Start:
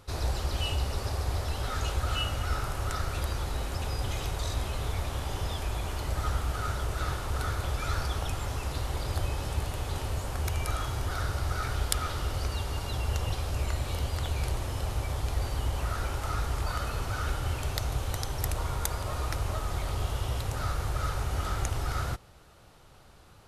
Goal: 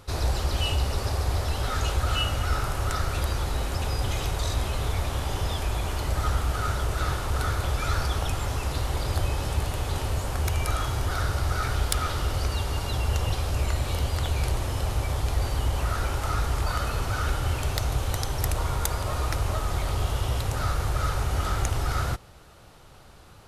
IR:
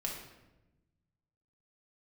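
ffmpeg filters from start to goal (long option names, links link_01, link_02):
-af "acontrast=20,asoftclip=type=tanh:threshold=-9.5dB"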